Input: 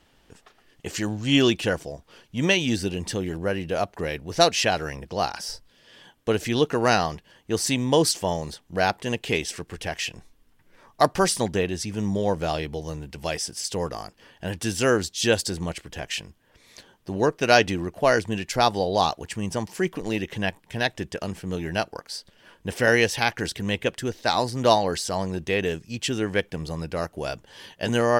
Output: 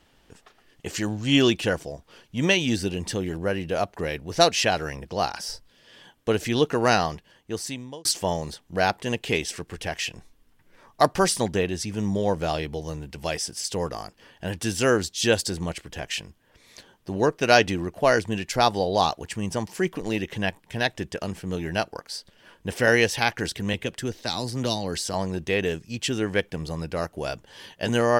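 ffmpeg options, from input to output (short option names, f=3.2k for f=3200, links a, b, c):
-filter_complex "[0:a]asettb=1/sr,asplit=3[a][b][c];[a]atrim=end=23.734[d];[b]atrim=start=23.73:end=25.14,asetpts=PTS-STARTPTS,afade=t=in:d=0.004:c=qsin,afade=t=out:st=1.406:d=0.004:c=qsin,acrossover=split=330|3000[e][f][g];[f]acompressor=threshold=-30dB:ratio=6:attack=3.2:release=140:knee=2.83:detection=peak[h];[e][h][g]amix=inputs=3:normalize=0[i];[c]atrim=start=25.136[j];[d][i]acrossfade=d=0.004:c1=hsin:c2=qsin[k];[k][j]acrossfade=d=0.004:c1=qsin:c2=hsin,asplit=2[l][m];[l]atrim=end=8.05,asetpts=PTS-STARTPTS,afade=t=out:st=7.09:d=0.96[n];[m]atrim=start=8.05,asetpts=PTS-STARTPTS,afade=t=in:d=0.004:c=hsin[o];[n][o]concat=n=2:v=0:a=1"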